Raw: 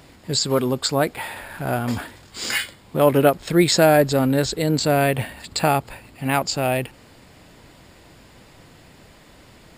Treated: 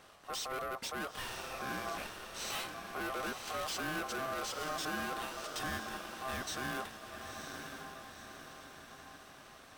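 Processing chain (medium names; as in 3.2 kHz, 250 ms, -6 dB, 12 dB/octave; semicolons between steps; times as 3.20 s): bass shelf 100 Hz -11 dB; valve stage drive 29 dB, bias 0.4; echo that smears into a reverb 982 ms, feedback 51%, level -6 dB; ring modulator 920 Hz; trim -5 dB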